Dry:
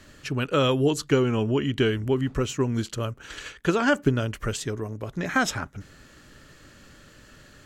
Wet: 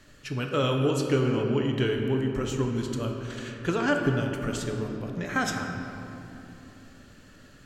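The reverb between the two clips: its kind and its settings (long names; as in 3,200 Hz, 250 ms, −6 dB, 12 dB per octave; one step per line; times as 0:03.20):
rectangular room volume 160 cubic metres, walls hard, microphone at 0.34 metres
level −5 dB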